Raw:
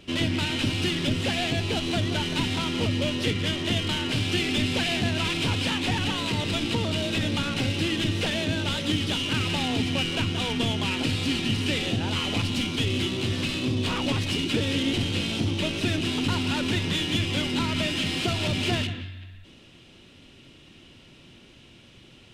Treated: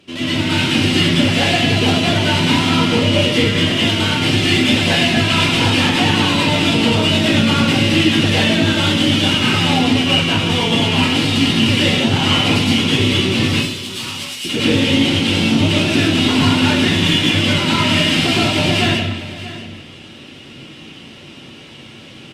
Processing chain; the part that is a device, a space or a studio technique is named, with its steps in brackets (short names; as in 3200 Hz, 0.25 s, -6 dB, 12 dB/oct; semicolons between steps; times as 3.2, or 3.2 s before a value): 13.49–14.45 differentiator; echo 0.635 s -16 dB; far-field microphone of a smart speaker (reverb RT60 0.65 s, pre-delay 0.104 s, DRR -8 dB; HPF 120 Hz 12 dB/oct; AGC gain up to 6.5 dB; Opus 48 kbps 48000 Hz)